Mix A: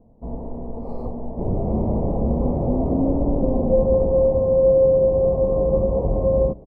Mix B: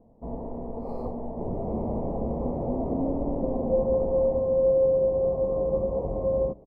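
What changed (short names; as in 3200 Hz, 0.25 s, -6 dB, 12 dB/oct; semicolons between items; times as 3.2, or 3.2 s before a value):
background -5.0 dB; master: add low shelf 200 Hz -7.5 dB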